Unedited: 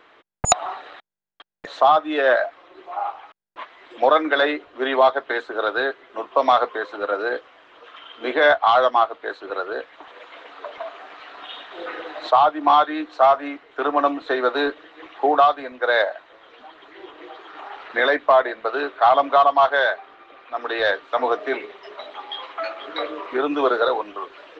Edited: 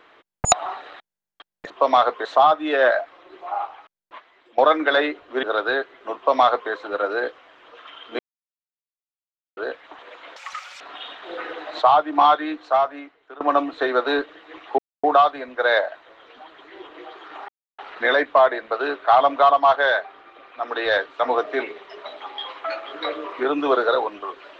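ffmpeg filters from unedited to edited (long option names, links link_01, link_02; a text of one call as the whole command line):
ffmpeg -i in.wav -filter_complex "[0:a]asplit=12[link_01][link_02][link_03][link_04][link_05][link_06][link_07][link_08][link_09][link_10][link_11][link_12];[link_01]atrim=end=1.702[link_13];[link_02]atrim=start=6.248:end=6.802[link_14];[link_03]atrim=start=1.698:end=4.03,asetpts=PTS-STARTPTS,afade=type=out:start_time=1.312:duration=1.02:silence=0.158489[link_15];[link_04]atrim=start=4.03:end=4.882,asetpts=PTS-STARTPTS,afade=type=in:duration=0.004:curve=hsin:silence=0.158489[link_16];[link_05]atrim=start=5.518:end=8.28,asetpts=PTS-STARTPTS,afade=type=out:start_time=2.758:duration=0.004:curve=hsin[link_17];[link_06]atrim=start=8.28:end=9.66,asetpts=PTS-STARTPTS,volume=0[link_18];[link_07]atrim=start=9.66:end=10.454,asetpts=PTS-STARTPTS,afade=type=in:duration=0.004:curve=hsin[link_19];[link_08]atrim=start=10.45:end=11.29,asetpts=PTS-STARTPTS,asetrate=83349,aresample=44100[link_20];[link_09]atrim=start=11.286:end=13.89,asetpts=PTS-STARTPTS,afade=type=out:start_time=1.594:duration=1.01:silence=0.0794328[link_21];[link_10]atrim=start=13.89:end=15.27,asetpts=PTS-STARTPTS,afade=type=in:duration=0.004:curve=hsin:silence=0.0794328,afade=type=out:start_time=1.376:duration=0.004:curve=hsin,apad=pad_dur=0.25[link_22];[link_11]atrim=start=15.27:end=17.72,asetpts=PTS-STARTPTS,afade=type=in:duration=0.004:curve=hsin,afade=type=out:start_time=2.446:duration=0.004:curve=hsin,apad=pad_dur=0.3[link_23];[link_12]atrim=start=17.72,asetpts=PTS-STARTPTS,afade=type=in:duration=0.004:curve=hsin[link_24];[link_13][link_14]acrossfade=duration=0.004:curve1=hsin:curve2=hsin[link_25];[link_15][link_16]concat=n=2:v=0:a=1[link_26];[link_25][link_26]acrossfade=duration=0.004:curve1=hsin:curve2=hsin[link_27];[link_17][link_18][link_19]concat=n=3:v=0:a=1[link_28];[link_27][link_28]acrossfade=duration=0.004:curve1=hsin:curve2=hsin[link_29];[link_29][link_20]acrossfade=duration=0.004:curve1=hsin:curve2=hsin[link_30];[link_21][link_22][link_23][link_24]concat=n=4:v=0:a=1[link_31];[link_30][link_31]acrossfade=duration=0.004:curve1=hsin:curve2=hsin" out.wav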